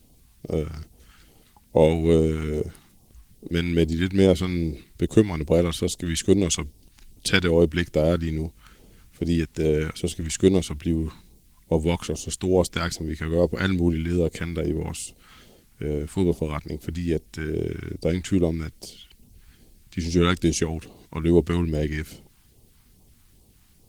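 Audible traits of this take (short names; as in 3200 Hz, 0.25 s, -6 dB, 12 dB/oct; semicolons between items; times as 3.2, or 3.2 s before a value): a quantiser's noise floor 12-bit, dither triangular; phasing stages 2, 2.4 Hz, lowest notch 480–1500 Hz; Opus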